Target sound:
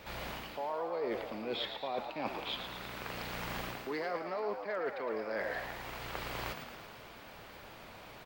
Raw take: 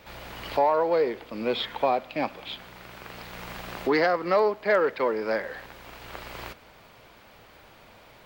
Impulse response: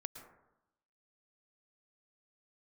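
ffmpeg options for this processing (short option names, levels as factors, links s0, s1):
-filter_complex "[0:a]areverse,acompressor=threshold=0.02:ratio=16,areverse,asplit=9[s0][s1][s2][s3][s4][s5][s6][s7][s8];[s1]adelay=112,afreqshift=90,volume=0.398[s9];[s2]adelay=224,afreqshift=180,volume=0.24[s10];[s3]adelay=336,afreqshift=270,volume=0.143[s11];[s4]adelay=448,afreqshift=360,volume=0.0861[s12];[s5]adelay=560,afreqshift=450,volume=0.0519[s13];[s6]adelay=672,afreqshift=540,volume=0.0309[s14];[s7]adelay=784,afreqshift=630,volume=0.0186[s15];[s8]adelay=896,afreqshift=720,volume=0.0111[s16];[s0][s9][s10][s11][s12][s13][s14][s15][s16]amix=inputs=9:normalize=0"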